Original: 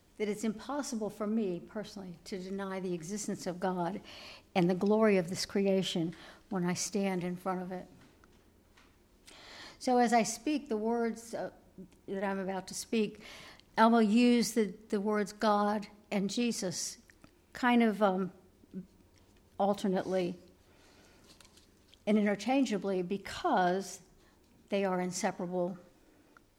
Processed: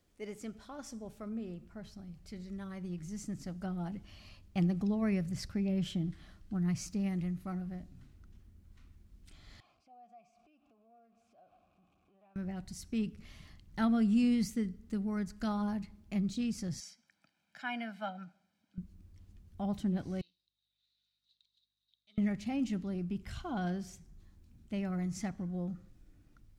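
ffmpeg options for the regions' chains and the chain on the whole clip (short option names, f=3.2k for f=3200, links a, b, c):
-filter_complex "[0:a]asettb=1/sr,asplit=3[a][b][c];[a]atrim=end=9.604[d];[b]atrim=start=9.6:end=12.36,asetpts=PTS-STARTPTS,afade=t=in:d=0.004:c=qsin,afade=t=out:st=2.756:d=0.004:c=qsin,aeval=exprs='val(0)+0.5*0.00708*sgn(val(0))':c=same,acompressor=threshold=-40dB:ratio=5:attack=3.2:release=140:knee=1:detection=peak,asplit=3[e][f][g];[e]bandpass=f=730:t=q:w=8,volume=0dB[h];[f]bandpass=f=1.09k:t=q:w=8,volume=-6dB[i];[g]bandpass=f=2.44k:t=q:w=8,volume=-9dB[j];[h][i][j]amix=inputs=3:normalize=0[k];[c]atrim=start=12.356[l];[d][k]acrossfade=d=0.004:c1=hsin:c2=qsin[m];[m][l]acrossfade=d=0.004:c1=qsin:c2=hsin,asettb=1/sr,asplit=3[n][o][p];[n]atrim=end=16.804[q];[o]atrim=start=16.8:end=18.78,asetpts=PTS-STARTPTS,afade=t=in:d=0.004:c=qsin,afade=t=out:st=1.976:d=0.004:c=qsin,highpass=f=180:w=0.5412,highpass=f=180:w=1.3066,acrossover=split=560 5500:gain=0.2 1 0.251[r][s][t];[r][s][t]amix=inputs=3:normalize=0,aecho=1:1:1.3:0.76,atrim=end_sample=87318[u];[p]atrim=start=18.776[v];[q][u]acrossfade=d=0.004:c1=hsin:c2=qsin[w];[w][v]acrossfade=d=0.004:c1=qsin:c2=hsin,asettb=1/sr,asplit=3[x][y][z];[x]atrim=end=20.214[aa];[y]atrim=start=20.21:end=22.18,asetpts=PTS-STARTPTS,afade=t=in:d=0.004:c=qsin,afade=t=out:st=1.966:d=0.004:c=qsin,aeval=exprs='val(0)+0.00224*(sin(2*PI*50*n/s)+sin(2*PI*2*50*n/s)/2+sin(2*PI*3*50*n/s)/3+sin(2*PI*4*50*n/s)/4+sin(2*PI*5*50*n/s)/5)':c=same,acontrast=87,bandpass=f=3.8k:t=q:w=19[ab];[z]atrim=start=22.176[ac];[aa][ab]acrossfade=d=0.004:c1=hsin:c2=qsin[ad];[ad][ac]acrossfade=d=0.004:c1=qsin:c2=hsin,bandreject=f=920:w=8.9,asubboost=boost=11:cutoff=140,volume=-8.5dB"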